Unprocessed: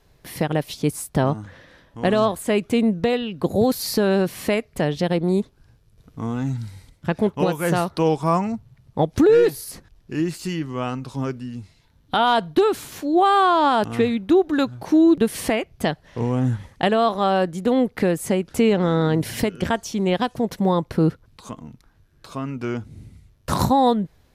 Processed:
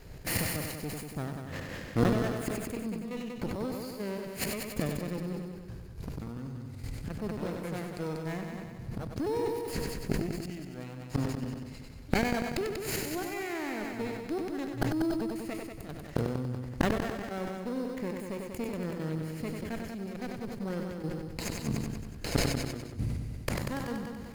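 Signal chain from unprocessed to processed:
lower of the sound and its delayed copy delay 0.43 ms
gate with flip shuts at −25 dBFS, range −27 dB
in parallel at −6 dB: sample-rate reduction 4,700 Hz, jitter 0%
on the sum: gate pattern "xx.xx.xxxxxx.xx." 169 BPM −12 dB
on a send: echo machine with several playback heads 95 ms, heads first and second, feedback 55%, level −8.5 dB
on the sum: level that may fall only so fast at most 37 dB per second
level +6.5 dB

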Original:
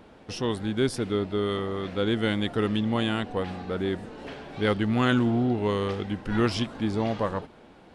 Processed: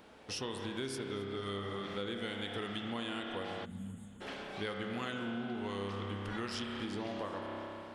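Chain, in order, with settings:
spectral tilt +2 dB per octave
spring reverb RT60 2.5 s, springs 30 ms, chirp 70 ms, DRR 2 dB
time-frequency box erased 0:03.65–0:04.21, 270–6,400 Hz
downward compressor, threshold −31 dBFS, peak gain reduction 12 dB
feedback echo with a swinging delay time 264 ms, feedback 69%, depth 74 cents, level −22 dB
level −5 dB

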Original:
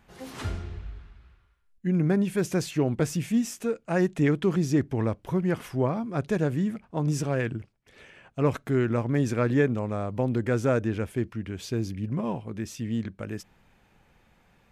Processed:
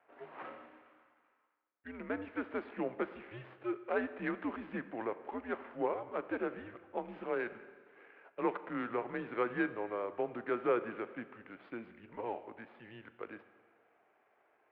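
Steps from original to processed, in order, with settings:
running median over 15 samples
four-comb reverb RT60 1.7 s, combs from 26 ms, DRR 12.5 dB
single-sideband voice off tune −110 Hz 500–3,000 Hz
level −3 dB

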